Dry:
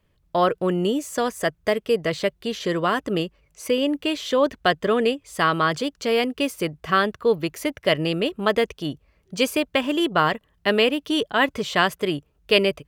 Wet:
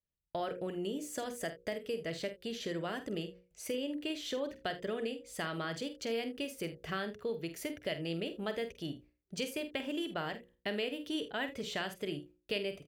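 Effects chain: gate with hold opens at -50 dBFS; bell 1100 Hz -11 dB 0.49 oct; notches 60/120/180/240/300/360/420/480/540 Hz; compressor 2.5:1, threshold -29 dBFS, peak gain reduction 11 dB; on a send: early reflections 48 ms -10.5 dB, 78 ms -18 dB; on the sum: gain -8 dB

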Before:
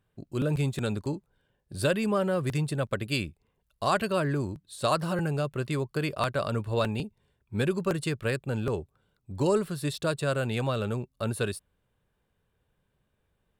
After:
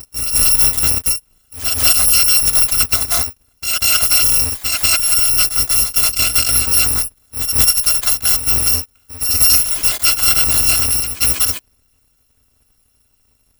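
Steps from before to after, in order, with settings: FFT order left unsorted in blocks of 256 samples; reverse echo 0.191 s -8 dB; maximiser +16 dB; gain -1.5 dB

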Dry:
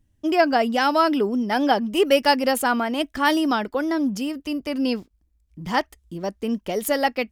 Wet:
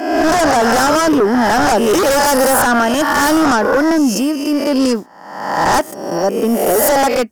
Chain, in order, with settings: spectral swells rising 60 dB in 0.94 s; HPF 240 Hz 12 dB/oct; in parallel at -9 dB: sine folder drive 16 dB, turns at -3 dBFS; on the sum: band shelf 3000 Hz -9.5 dB 1.3 oct

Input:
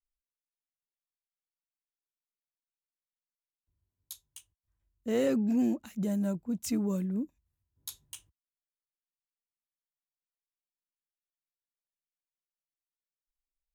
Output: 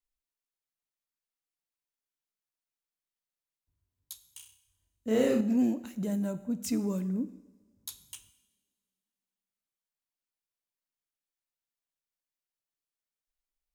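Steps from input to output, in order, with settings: 4.24–5.41 flutter echo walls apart 5.5 m, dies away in 0.46 s; on a send at -12 dB: reverb, pre-delay 3 ms

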